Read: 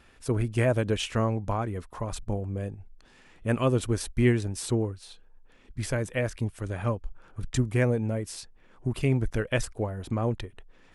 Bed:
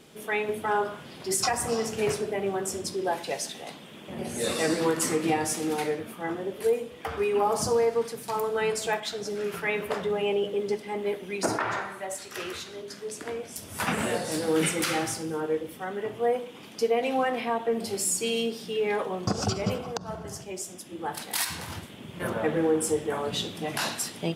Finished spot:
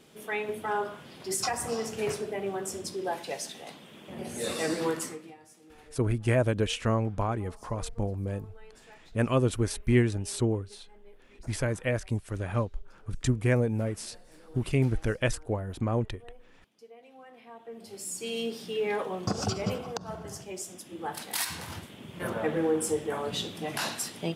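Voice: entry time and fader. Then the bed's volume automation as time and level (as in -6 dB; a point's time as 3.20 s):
5.70 s, -0.5 dB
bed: 4.95 s -4 dB
5.37 s -27 dB
17.13 s -27 dB
18.53 s -2.5 dB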